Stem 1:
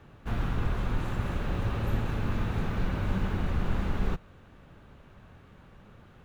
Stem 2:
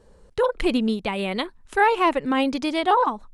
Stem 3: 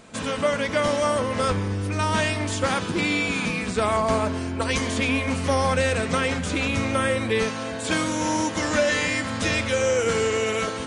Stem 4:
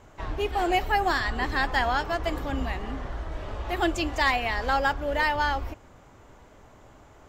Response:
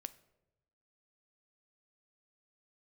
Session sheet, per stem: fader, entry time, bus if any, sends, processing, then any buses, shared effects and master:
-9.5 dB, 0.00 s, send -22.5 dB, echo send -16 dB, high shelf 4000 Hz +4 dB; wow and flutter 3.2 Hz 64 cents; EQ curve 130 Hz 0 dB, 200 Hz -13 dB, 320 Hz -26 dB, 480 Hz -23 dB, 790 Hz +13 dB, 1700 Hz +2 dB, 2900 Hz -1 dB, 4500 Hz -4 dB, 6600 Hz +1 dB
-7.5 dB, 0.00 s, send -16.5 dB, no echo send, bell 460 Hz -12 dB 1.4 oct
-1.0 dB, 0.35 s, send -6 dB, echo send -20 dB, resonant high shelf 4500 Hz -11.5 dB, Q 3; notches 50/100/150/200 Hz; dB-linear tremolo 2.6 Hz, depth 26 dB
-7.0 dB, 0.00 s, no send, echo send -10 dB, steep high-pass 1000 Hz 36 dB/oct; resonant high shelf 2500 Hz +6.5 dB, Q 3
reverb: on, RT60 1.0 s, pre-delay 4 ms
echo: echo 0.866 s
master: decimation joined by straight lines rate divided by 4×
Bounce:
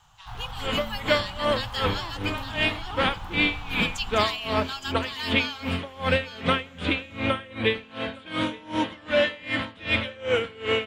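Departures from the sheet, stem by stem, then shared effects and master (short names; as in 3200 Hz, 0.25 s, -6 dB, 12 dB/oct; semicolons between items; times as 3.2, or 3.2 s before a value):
stem 2 -7.5 dB -> -17.0 dB; master: missing decimation joined by straight lines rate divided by 4×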